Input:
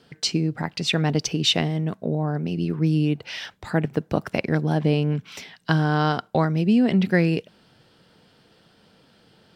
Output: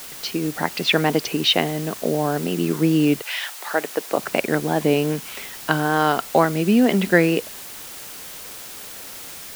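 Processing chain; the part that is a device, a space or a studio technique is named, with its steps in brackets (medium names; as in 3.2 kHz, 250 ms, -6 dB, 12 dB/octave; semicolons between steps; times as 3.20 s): dictaphone (band-pass 290–3400 Hz; level rider gain up to 9 dB; wow and flutter; white noise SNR 15 dB); 3.21–4.17 s: high-pass 850 Hz -> 350 Hz 12 dB/octave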